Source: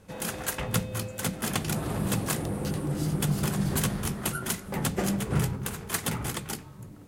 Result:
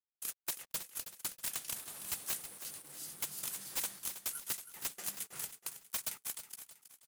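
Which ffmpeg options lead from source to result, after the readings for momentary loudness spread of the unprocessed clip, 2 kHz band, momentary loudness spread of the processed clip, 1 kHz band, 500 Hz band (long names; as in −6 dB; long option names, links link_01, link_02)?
6 LU, −13.5 dB, 8 LU, −17.0 dB, −23.0 dB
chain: -af "agate=range=-23dB:threshold=-31dB:ratio=16:detection=peak,aderivative,aeval=exprs='(mod(16.8*val(0)+1,2)-1)/16.8':channel_layout=same,acrusher=bits=7:mix=0:aa=0.5,aecho=1:1:321|642|963|1284:0.282|0.104|0.0386|0.0143,volume=-3.5dB"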